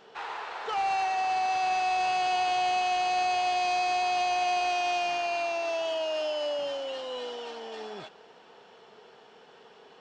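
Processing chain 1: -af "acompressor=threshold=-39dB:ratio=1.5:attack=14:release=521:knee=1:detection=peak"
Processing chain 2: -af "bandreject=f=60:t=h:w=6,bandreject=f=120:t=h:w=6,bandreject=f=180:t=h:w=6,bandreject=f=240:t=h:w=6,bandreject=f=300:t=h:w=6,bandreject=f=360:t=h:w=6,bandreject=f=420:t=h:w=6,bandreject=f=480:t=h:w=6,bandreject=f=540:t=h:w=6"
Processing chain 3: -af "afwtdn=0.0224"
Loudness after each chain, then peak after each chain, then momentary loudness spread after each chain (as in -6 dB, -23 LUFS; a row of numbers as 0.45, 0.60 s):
-33.5, -28.5, -29.0 LUFS; -26.5, -22.0, -21.0 dBFS; 9, 12, 13 LU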